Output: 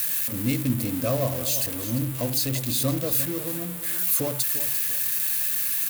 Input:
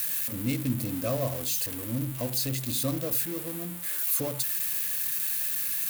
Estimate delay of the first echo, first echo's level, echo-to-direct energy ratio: 0.345 s, -12.5 dB, -12.0 dB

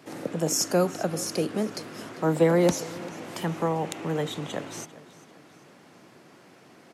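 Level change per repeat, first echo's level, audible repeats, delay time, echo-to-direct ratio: -7.0 dB, -19.0 dB, 3, 0.395 s, -18.0 dB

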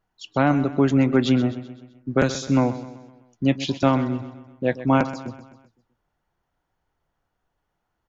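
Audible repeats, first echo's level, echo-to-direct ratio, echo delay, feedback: 4, -14.0 dB, -12.5 dB, 0.128 s, 50%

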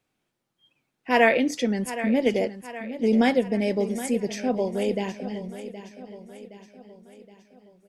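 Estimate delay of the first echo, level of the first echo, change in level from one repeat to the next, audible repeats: 0.769 s, -13.0 dB, -6.0 dB, 4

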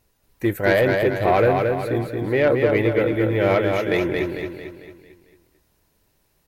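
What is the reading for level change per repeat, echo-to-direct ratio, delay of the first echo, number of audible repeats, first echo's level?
-6.5 dB, -3.0 dB, 0.224 s, 5, -4.0 dB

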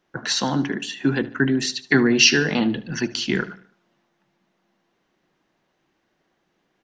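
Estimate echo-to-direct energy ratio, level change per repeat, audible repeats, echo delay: -17.5 dB, -7.0 dB, 3, 74 ms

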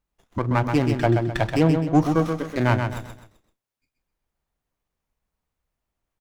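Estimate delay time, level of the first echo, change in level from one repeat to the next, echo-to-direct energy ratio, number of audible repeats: 0.129 s, -6.0 dB, -8.5 dB, -5.5 dB, 4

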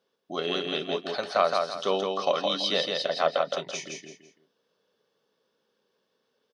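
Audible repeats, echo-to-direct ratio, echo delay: 3, -3.5 dB, 0.166 s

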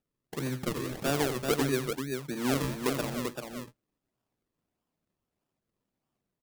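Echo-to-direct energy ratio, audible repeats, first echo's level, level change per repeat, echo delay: -4.5 dB, 2, -12.5 dB, no steady repeat, 86 ms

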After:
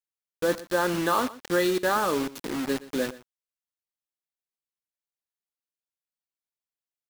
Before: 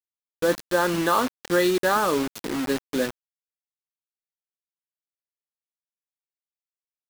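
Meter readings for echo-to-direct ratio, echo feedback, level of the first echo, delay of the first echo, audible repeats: -18.0 dB, no steady repeat, -18.0 dB, 0.12 s, 1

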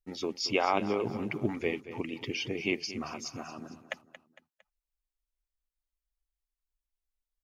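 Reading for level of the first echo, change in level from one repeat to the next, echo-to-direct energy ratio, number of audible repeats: -14.0 dB, -7.0 dB, -13.0 dB, 3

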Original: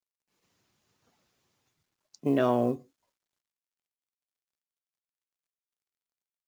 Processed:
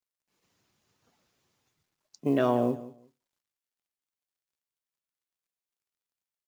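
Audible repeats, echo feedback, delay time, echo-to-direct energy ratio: 2, 18%, 0.177 s, -17.0 dB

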